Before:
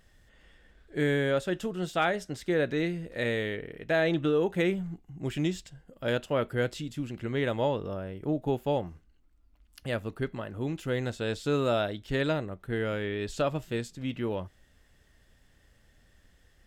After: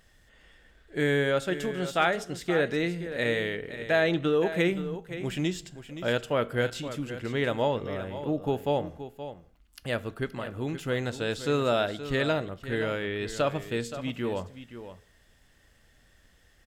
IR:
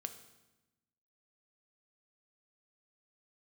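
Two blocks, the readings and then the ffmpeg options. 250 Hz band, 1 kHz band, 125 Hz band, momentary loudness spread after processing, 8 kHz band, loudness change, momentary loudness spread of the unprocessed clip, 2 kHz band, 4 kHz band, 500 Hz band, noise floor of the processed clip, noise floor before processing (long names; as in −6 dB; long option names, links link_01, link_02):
+0.5 dB, +2.5 dB, 0.0 dB, 11 LU, +3.5 dB, +1.5 dB, 9 LU, +3.5 dB, +3.5 dB, +1.5 dB, −62 dBFS, −63 dBFS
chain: -filter_complex "[0:a]lowshelf=frequency=470:gain=-4.5,aecho=1:1:523:0.251,asplit=2[link_01][link_02];[1:a]atrim=start_sample=2205,afade=type=out:start_time=0.26:duration=0.01,atrim=end_sample=11907[link_03];[link_02][link_03]afir=irnorm=-1:irlink=0,volume=-3.5dB[link_04];[link_01][link_04]amix=inputs=2:normalize=0"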